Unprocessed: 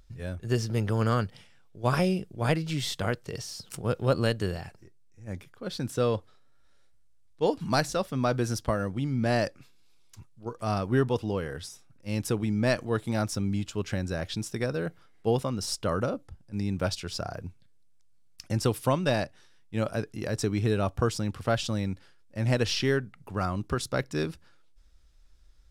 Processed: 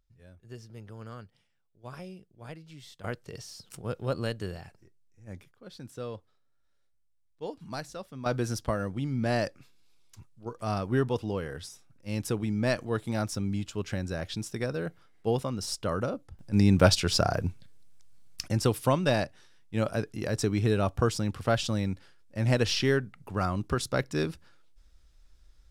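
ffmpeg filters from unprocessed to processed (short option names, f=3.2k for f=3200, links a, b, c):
-af "asetnsamples=n=441:p=0,asendcmd='3.04 volume volume -6dB;5.51 volume volume -12dB;8.26 volume volume -2dB;16.39 volume volume 9dB;18.48 volume volume 0.5dB',volume=-18dB"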